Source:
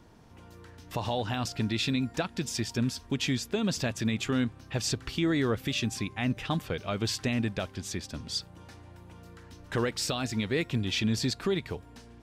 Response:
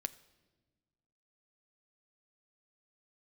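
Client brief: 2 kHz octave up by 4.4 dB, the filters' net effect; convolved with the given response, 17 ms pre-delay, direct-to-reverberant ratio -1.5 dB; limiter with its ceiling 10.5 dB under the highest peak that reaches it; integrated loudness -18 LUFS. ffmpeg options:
-filter_complex "[0:a]equalizer=f=2000:t=o:g=5.5,alimiter=level_in=1.33:limit=0.0631:level=0:latency=1,volume=0.75,asplit=2[s0][s1];[1:a]atrim=start_sample=2205,adelay=17[s2];[s1][s2]afir=irnorm=-1:irlink=0,volume=1.33[s3];[s0][s3]amix=inputs=2:normalize=0,volume=5.01"

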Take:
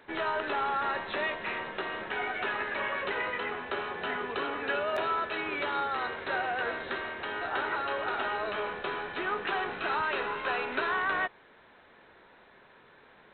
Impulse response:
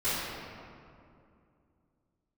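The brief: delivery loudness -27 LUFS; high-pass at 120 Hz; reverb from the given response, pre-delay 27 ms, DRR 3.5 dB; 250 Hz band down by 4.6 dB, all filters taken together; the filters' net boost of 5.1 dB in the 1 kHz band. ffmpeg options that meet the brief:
-filter_complex "[0:a]highpass=120,equalizer=f=250:t=o:g=-7.5,equalizer=f=1000:t=o:g=7,asplit=2[s0][s1];[1:a]atrim=start_sample=2205,adelay=27[s2];[s1][s2]afir=irnorm=-1:irlink=0,volume=0.188[s3];[s0][s3]amix=inputs=2:normalize=0"

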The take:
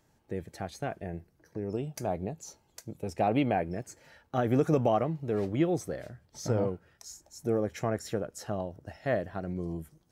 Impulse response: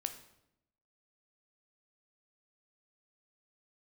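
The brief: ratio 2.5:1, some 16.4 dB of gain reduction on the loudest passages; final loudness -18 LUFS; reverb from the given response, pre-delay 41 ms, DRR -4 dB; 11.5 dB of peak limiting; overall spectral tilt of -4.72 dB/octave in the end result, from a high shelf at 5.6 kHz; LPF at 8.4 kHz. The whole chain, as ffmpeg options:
-filter_complex "[0:a]lowpass=8400,highshelf=f=5600:g=7.5,acompressor=threshold=0.00447:ratio=2.5,alimiter=level_in=6.31:limit=0.0631:level=0:latency=1,volume=0.158,asplit=2[s0][s1];[1:a]atrim=start_sample=2205,adelay=41[s2];[s1][s2]afir=irnorm=-1:irlink=0,volume=1.68[s3];[s0][s3]amix=inputs=2:normalize=0,volume=23.7"

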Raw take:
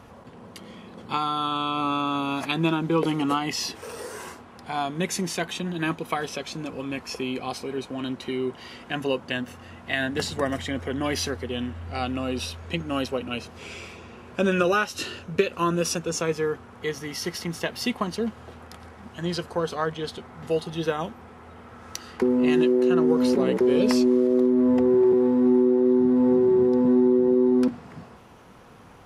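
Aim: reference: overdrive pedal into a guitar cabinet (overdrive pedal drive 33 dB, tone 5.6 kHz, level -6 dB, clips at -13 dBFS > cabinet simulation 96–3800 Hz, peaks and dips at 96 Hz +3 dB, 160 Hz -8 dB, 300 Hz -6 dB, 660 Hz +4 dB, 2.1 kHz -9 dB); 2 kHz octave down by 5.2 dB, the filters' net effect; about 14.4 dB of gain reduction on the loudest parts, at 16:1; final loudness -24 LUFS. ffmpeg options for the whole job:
-filter_complex "[0:a]equalizer=f=2000:t=o:g=-4,acompressor=threshold=0.0316:ratio=16,asplit=2[s0][s1];[s1]highpass=f=720:p=1,volume=44.7,asoftclip=type=tanh:threshold=0.224[s2];[s0][s2]amix=inputs=2:normalize=0,lowpass=f=5600:p=1,volume=0.501,highpass=96,equalizer=f=96:t=q:w=4:g=3,equalizer=f=160:t=q:w=4:g=-8,equalizer=f=300:t=q:w=4:g=-6,equalizer=f=660:t=q:w=4:g=4,equalizer=f=2100:t=q:w=4:g=-9,lowpass=f=3800:w=0.5412,lowpass=f=3800:w=1.3066,volume=0.944"

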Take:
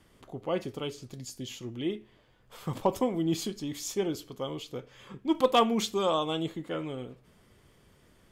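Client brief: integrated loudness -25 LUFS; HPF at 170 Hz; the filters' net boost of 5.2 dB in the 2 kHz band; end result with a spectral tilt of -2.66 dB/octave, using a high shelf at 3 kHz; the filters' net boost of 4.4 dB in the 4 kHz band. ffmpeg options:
-af "highpass=170,equalizer=f=2000:t=o:g=7.5,highshelf=f=3000:g=-8.5,equalizer=f=4000:t=o:g=9,volume=1.88"

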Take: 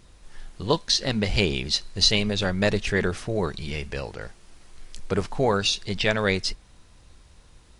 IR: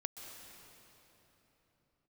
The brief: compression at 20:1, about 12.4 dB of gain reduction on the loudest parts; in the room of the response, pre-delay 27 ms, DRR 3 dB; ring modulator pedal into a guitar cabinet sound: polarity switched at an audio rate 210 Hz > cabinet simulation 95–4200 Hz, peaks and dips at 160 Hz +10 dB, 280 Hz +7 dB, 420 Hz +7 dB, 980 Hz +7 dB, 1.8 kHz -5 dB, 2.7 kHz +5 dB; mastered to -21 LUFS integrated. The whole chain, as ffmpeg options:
-filter_complex "[0:a]acompressor=threshold=0.0398:ratio=20,asplit=2[s0][s1];[1:a]atrim=start_sample=2205,adelay=27[s2];[s1][s2]afir=irnorm=-1:irlink=0,volume=0.841[s3];[s0][s3]amix=inputs=2:normalize=0,aeval=exprs='val(0)*sgn(sin(2*PI*210*n/s))':c=same,highpass=95,equalizer=f=160:t=q:w=4:g=10,equalizer=f=280:t=q:w=4:g=7,equalizer=f=420:t=q:w=4:g=7,equalizer=f=980:t=q:w=4:g=7,equalizer=f=1800:t=q:w=4:g=-5,equalizer=f=2700:t=q:w=4:g=5,lowpass=f=4200:w=0.5412,lowpass=f=4200:w=1.3066,volume=2.66"

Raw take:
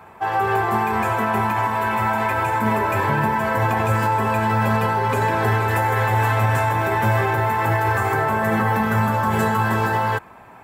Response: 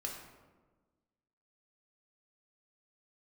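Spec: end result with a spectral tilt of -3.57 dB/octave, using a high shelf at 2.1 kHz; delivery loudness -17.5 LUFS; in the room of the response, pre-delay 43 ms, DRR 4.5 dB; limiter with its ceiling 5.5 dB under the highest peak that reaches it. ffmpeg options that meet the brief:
-filter_complex "[0:a]highshelf=f=2100:g=-8,alimiter=limit=0.188:level=0:latency=1,asplit=2[s0][s1];[1:a]atrim=start_sample=2205,adelay=43[s2];[s1][s2]afir=irnorm=-1:irlink=0,volume=0.596[s3];[s0][s3]amix=inputs=2:normalize=0,volume=1.5"

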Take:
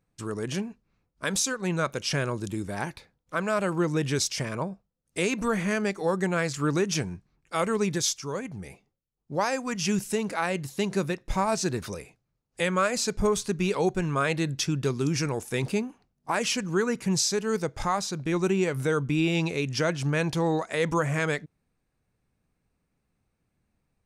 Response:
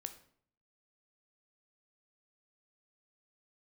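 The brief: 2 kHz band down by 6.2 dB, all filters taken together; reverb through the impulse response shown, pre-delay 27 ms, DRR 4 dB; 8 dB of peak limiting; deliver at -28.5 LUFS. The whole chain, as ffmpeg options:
-filter_complex "[0:a]equalizer=f=2000:t=o:g=-8.5,alimiter=limit=0.075:level=0:latency=1,asplit=2[s0][s1];[1:a]atrim=start_sample=2205,adelay=27[s2];[s1][s2]afir=irnorm=-1:irlink=0,volume=0.944[s3];[s0][s3]amix=inputs=2:normalize=0,volume=1.33"

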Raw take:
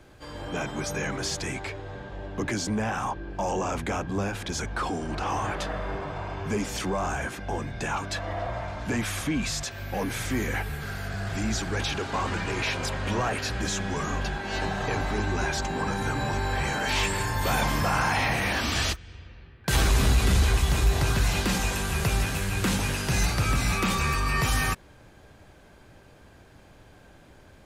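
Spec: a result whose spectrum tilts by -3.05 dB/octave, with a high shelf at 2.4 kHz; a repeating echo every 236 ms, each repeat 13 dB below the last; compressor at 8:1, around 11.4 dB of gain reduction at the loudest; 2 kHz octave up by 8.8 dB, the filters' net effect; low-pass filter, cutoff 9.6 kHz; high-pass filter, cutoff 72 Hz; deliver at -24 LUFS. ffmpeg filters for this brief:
-af "highpass=72,lowpass=9600,equalizer=f=2000:t=o:g=8.5,highshelf=f=2400:g=5.5,acompressor=threshold=0.0398:ratio=8,aecho=1:1:236|472|708:0.224|0.0493|0.0108,volume=2.11"

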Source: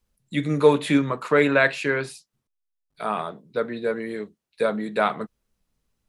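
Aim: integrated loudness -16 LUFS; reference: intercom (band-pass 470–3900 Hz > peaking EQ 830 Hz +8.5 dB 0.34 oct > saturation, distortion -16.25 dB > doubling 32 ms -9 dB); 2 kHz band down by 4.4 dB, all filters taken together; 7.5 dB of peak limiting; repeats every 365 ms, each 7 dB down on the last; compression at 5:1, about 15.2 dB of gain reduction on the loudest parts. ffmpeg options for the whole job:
-filter_complex "[0:a]equalizer=f=2000:t=o:g=-6,acompressor=threshold=0.0398:ratio=5,alimiter=level_in=1.06:limit=0.0631:level=0:latency=1,volume=0.944,highpass=470,lowpass=3900,equalizer=f=830:t=o:w=0.34:g=8.5,aecho=1:1:365|730|1095|1460|1825:0.447|0.201|0.0905|0.0407|0.0183,asoftclip=threshold=0.0355,asplit=2[s0][s1];[s1]adelay=32,volume=0.355[s2];[s0][s2]amix=inputs=2:normalize=0,volume=15"

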